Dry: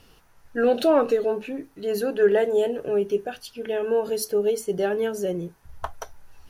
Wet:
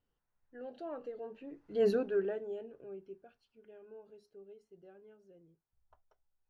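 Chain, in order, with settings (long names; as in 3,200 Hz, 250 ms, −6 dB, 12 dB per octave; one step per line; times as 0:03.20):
source passing by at 0:01.86, 15 m/s, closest 1.1 metres
head-to-tape spacing loss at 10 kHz 22 dB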